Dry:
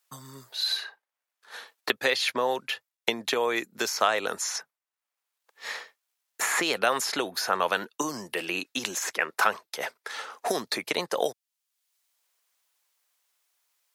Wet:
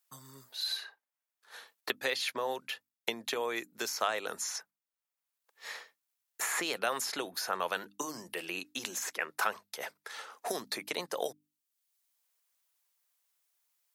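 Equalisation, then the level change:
high-shelf EQ 9,300 Hz +7.5 dB
mains-hum notches 50/100/150/200/250/300 Hz
−8.0 dB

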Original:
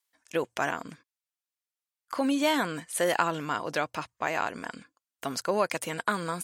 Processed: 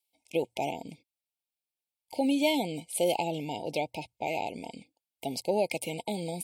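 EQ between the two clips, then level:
linear-phase brick-wall band-stop 930–2,100 Hz
parametric band 6,500 Hz −9 dB 0.38 octaves
0.0 dB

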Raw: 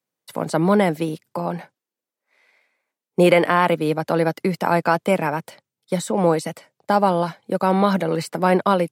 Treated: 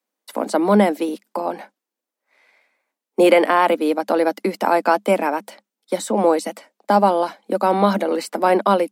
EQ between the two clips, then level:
dynamic equaliser 1,500 Hz, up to −3 dB, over −33 dBFS, Q 0.73
Chebyshev high-pass with heavy ripple 200 Hz, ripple 3 dB
+4.5 dB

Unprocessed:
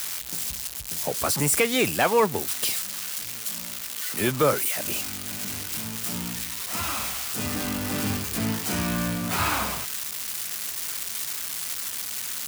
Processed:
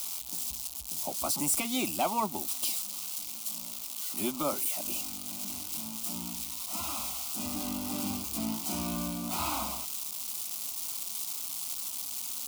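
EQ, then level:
phaser with its sweep stopped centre 460 Hz, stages 6
−4.5 dB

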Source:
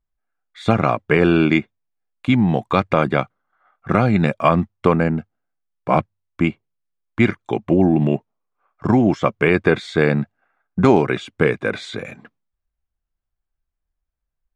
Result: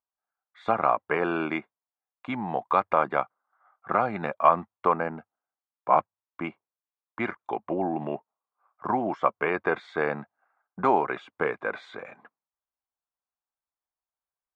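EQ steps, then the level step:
resonant band-pass 960 Hz, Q 1.8
0.0 dB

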